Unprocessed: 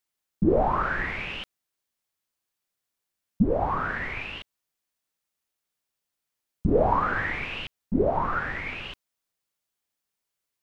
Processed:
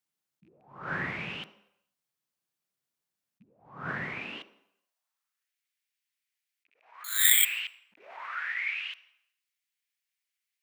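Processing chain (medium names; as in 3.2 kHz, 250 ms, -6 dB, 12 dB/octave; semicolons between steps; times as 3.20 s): rattle on loud lows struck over -21 dBFS, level -16 dBFS; high-pass sweep 140 Hz -> 2.1 kHz, 4.04–5.56 s; 7.04–7.45 s: careless resampling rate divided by 8×, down filtered, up zero stuff; on a send at -13.5 dB: reverberation RT60 0.75 s, pre-delay 46 ms; on the sum: attacks held to a fixed rise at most 110 dB/s; trim -4 dB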